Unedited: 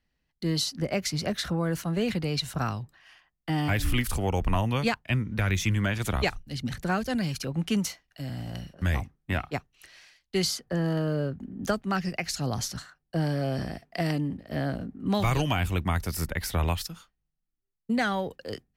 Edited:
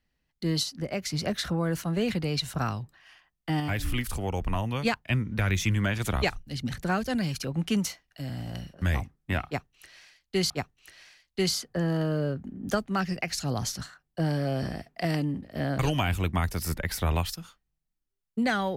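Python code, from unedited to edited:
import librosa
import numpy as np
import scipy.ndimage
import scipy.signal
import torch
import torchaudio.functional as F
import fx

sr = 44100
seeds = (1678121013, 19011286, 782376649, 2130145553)

y = fx.edit(x, sr, fx.clip_gain(start_s=0.63, length_s=0.47, db=-3.5),
    fx.clip_gain(start_s=3.6, length_s=1.25, db=-3.5),
    fx.repeat(start_s=9.46, length_s=1.04, count=2),
    fx.cut(start_s=14.75, length_s=0.56), tone=tone)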